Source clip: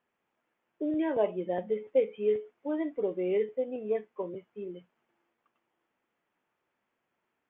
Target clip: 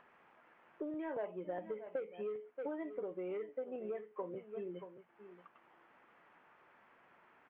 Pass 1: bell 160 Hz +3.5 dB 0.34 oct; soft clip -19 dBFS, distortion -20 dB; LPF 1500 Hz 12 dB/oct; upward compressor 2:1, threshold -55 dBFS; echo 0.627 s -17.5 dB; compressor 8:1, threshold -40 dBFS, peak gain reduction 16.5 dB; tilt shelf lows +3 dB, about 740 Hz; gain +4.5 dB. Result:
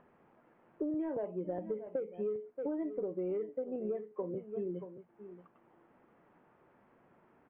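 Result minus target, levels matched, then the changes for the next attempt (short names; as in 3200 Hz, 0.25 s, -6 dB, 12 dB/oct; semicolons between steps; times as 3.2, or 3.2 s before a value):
1000 Hz band -6.0 dB
change: tilt shelf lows -7.5 dB, about 740 Hz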